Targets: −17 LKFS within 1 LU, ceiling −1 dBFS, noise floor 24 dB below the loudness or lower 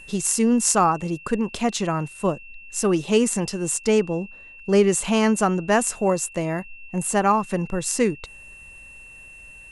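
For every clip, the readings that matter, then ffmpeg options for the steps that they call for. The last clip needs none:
interfering tone 2,700 Hz; level of the tone −42 dBFS; integrated loudness −22.0 LKFS; sample peak −4.5 dBFS; target loudness −17.0 LKFS
→ -af "bandreject=frequency=2700:width=30"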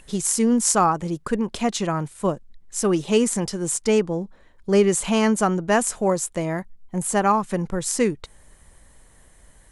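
interfering tone none found; integrated loudness −22.0 LKFS; sample peak −4.5 dBFS; target loudness −17.0 LKFS
→ -af "volume=5dB,alimiter=limit=-1dB:level=0:latency=1"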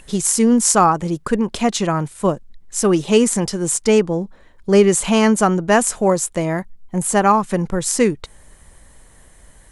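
integrated loudness −17.0 LKFS; sample peak −1.0 dBFS; background noise floor −48 dBFS

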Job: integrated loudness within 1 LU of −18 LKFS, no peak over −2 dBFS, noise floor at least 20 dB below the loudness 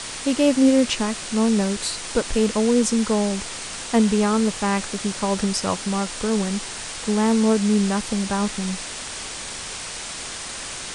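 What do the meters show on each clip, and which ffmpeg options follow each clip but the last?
background noise floor −33 dBFS; target noise floor −42 dBFS; integrated loudness −22.0 LKFS; sample peak −7.0 dBFS; target loudness −18.0 LKFS
→ -af "afftdn=noise_reduction=9:noise_floor=-33"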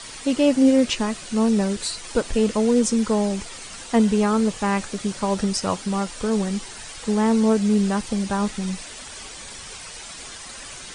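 background noise floor −38 dBFS; target noise floor −42 dBFS
→ -af "afftdn=noise_reduction=6:noise_floor=-38"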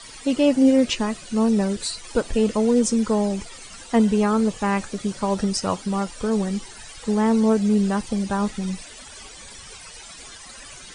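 background noise floor −42 dBFS; integrated loudness −22.0 LKFS; sample peak −7.5 dBFS; target loudness −18.0 LKFS
→ -af "volume=4dB"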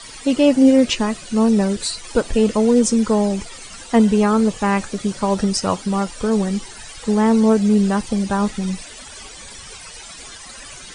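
integrated loudness −18.0 LKFS; sample peak −3.5 dBFS; background noise floor −38 dBFS

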